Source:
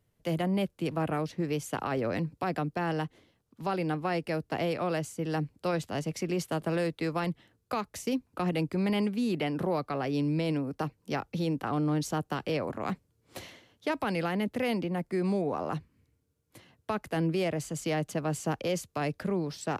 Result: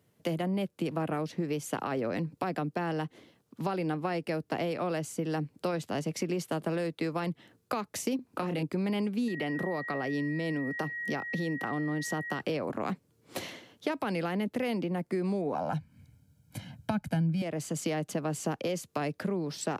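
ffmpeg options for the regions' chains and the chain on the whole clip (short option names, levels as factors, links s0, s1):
-filter_complex "[0:a]asettb=1/sr,asplit=3[s0][s1][s2];[s0]atrim=end=8.164[s3];[s1]atrim=start=8.16:end=8.63,asetpts=PTS-STARTPTS,afade=t=in:d=0.004:c=qsin,afade=t=out:st=0.466:d=0.004:c=qsin,acompressor=threshold=0.0224:ratio=2:attack=3.2:release=140:knee=1:detection=peak,asplit=2[s4][s5];[s5]adelay=30,volume=0.562[s6];[s4][s6]amix=inputs=2:normalize=0,atrim=end_sample=20727[s7];[s2]atrim=start=8.626[s8];[s3][s7]acrossfade=d=0.004:c1=hsin:c2=qsin[s9];[s9][s8]acrossfade=d=0.004:c1=qsin:c2=hsin,asettb=1/sr,asplit=3[s10][s11][s12];[s10]atrim=end=9.284[s13];[s11]atrim=start=9.28:end=12.41,asetpts=PTS-STARTPTS,afade=t=in:d=0.004:c=qsin,afade=t=out:st=3.126:d=0.004:c=qsin,acompressor=threshold=0.0126:ratio=1.5:attack=3.2:release=140:knee=1:detection=peak,aeval=exprs='val(0)+0.0112*sin(2*PI*1900*n/s)':c=same[s14];[s12]atrim=start=12.406[s15];[s13][s14]acrossfade=d=0.004:c1=hsin:c2=qsin[s16];[s16][s15]acrossfade=d=0.004:c1=qsin:c2=hsin,asettb=1/sr,asplit=3[s17][s18][s19];[s17]atrim=end=15.554[s20];[s18]atrim=start=15.55:end=17.42,asetpts=PTS-STARTPTS,afade=t=in:d=0.004:c=qsin,afade=t=out:st=1.866:d=0.004:c=qsin,aecho=1:1:1.3:0.95,atrim=end_sample=82467,asubboost=boost=10.5:cutoff=230[s21];[s19]atrim=start=17.416[s22];[s20][s21]acrossfade=d=0.004:c1=hsin:c2=qsin[s23];[s23][s22]acrossfade=d=0.004:c1=qsin:c2=hsin,acompressor=threshold=0.0141:ratio=4,highpass=170,lowshelf=f=300:g=5,volume=2"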